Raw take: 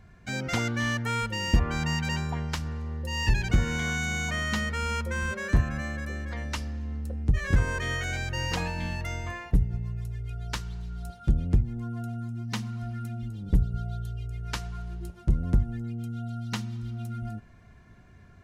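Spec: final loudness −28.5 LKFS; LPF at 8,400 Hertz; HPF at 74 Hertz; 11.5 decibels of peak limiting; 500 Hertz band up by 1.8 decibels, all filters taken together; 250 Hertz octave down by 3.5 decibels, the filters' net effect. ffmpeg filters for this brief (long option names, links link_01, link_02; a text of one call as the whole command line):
ffmpeg -i in.wav -af "highpass=74,lowpass=8400,equalizer=frequency=250:width_type=o:gain=-5.5,equalizer=frequency=500:width_type=o:gain=3.5,volume=6dB,alimiter=limit=-17dB:level=0:latency=1" out.wav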